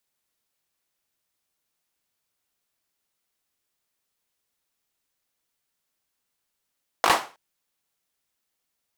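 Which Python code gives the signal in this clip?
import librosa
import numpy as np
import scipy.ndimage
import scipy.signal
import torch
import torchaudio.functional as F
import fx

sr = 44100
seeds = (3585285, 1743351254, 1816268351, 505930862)

y = fx.drum_clap(sr, seeds[0], length_s=0.32, bursts=4, spacing_ms=19, hz=880.0, decay_s=0.33)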